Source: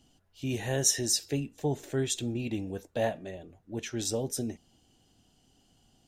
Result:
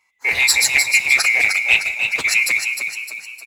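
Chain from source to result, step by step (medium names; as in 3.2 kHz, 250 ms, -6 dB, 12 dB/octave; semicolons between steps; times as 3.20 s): split-band scrambler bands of 2 kHz; high-pass 56 Hz 12 dB/octave; bass shelf 71 Hz +11 dB; waveshaping leveller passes 2; level rider gain up to 4 dB; time stretch by phase-locked vocoder 0.57×; frequency-shifting echo 306 ms, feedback 46%, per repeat +49 Hz, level -6 dB; reverberation RT60 2.5 s, pre-delay 40 ms, DRR 17.5 dB; loudspeaker Doppler distortion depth 0.27 ms; trim +4 dB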